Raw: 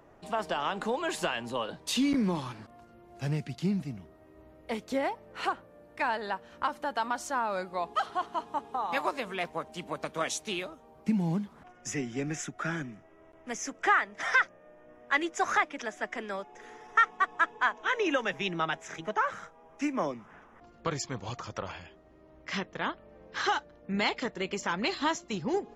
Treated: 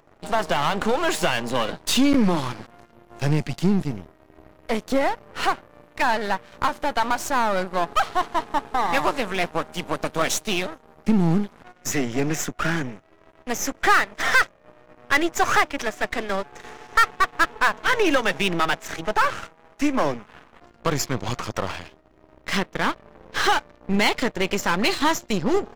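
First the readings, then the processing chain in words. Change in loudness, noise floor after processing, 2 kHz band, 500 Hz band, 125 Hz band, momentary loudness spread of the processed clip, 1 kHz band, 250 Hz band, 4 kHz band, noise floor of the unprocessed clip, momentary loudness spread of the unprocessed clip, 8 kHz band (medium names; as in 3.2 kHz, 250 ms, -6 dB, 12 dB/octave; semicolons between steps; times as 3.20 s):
+8.5 dB, -55 dBFS, +7.5 dB, +9.0 dB, +9.0 dB, 10 LU, +8.0 dB, +9.0 dB, +9.5 dB, -57 dBFS, 13 LU, +10.0 dB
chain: partial rectifier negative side -12 dB; waveshaping leveller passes 2; trim +6 dB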